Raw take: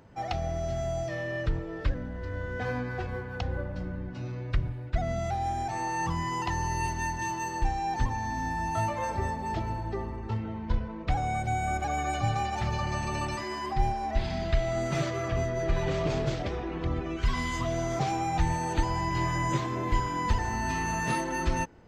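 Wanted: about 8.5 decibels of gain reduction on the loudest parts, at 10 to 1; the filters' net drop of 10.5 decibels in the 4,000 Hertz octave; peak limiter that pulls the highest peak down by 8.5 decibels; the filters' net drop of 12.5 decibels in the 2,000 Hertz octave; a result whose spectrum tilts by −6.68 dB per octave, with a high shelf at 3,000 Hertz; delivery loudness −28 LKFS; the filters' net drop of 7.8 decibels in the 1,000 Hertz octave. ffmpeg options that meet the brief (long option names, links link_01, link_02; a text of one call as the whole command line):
ffmpeg -i in.wav -af "equalizer=frequency=1000:width_type=o:gain=-7.5,equalizer=frequency=2000:width_type=o:gain=-9,highshelf=frequency=3000:gain=-9,equalizer=frequency=4000:width_type=o:gain=-3,acompressor=threshold=-29dB:ratio=10,volume=10dB,alimiter=limit=-18.5dB:level=0:latency=1" out.wav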